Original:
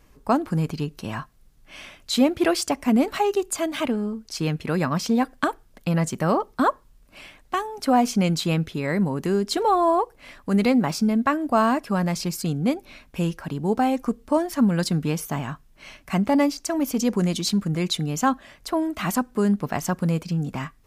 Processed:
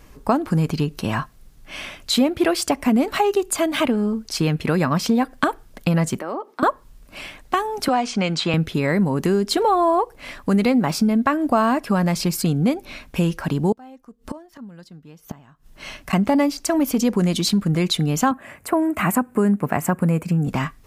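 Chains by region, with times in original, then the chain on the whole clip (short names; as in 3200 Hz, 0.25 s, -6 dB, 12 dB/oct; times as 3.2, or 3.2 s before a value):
6.19–6.63 Chebyshev high-pass 280 Hz, order 3 + high shelf 3400 Hz -10.5 dB + compressor 2.5:1, threshold -39 dBFS
7.88–8.54 Bessel low-pass 5400 Hz, order 6 + low shelf 440 Hz -11.5 dB + three-band squash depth 40%
13.72–16.13 dynamic EQ 9400 Hz, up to -7 dB, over -49 dBFS, Q 1 + notch 2300 Hz, Q 15 + flipped gate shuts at -25 dBFS, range -28 dB
18.31–20.48 HPF 65 Hz 24 dB/oct + band shelf 4400 Hz -13 dB 1.2 oct
whole clip: compressor 2.5:1, threshold -26 dBFS; dynamic EQ 6200 Hz, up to -4 dB, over -50 dBFS, Q 1.7; gain +8.5 dB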